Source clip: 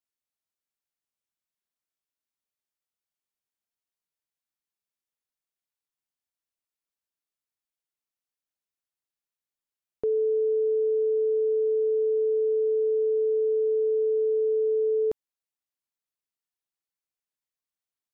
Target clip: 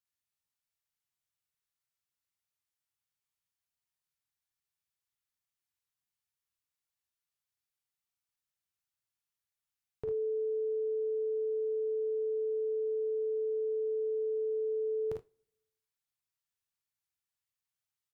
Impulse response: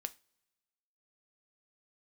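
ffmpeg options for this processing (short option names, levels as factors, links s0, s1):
-filter_complex "[0:a]equalizer=f=125:t=o:w=1:g=9,equalizer=f=250:t=o:w=1:g=-9,equalizer=f=500:t=o:w=1:g=-9,aecho=1:1:41|52|77:0.316|0.596|0.188[s0];[1:a]atrim=start_sample=2205,asetrate=52920,aresample=44100[s1];[s0][s1]afir=irnorm=-1:irlink=0,volume=1.33"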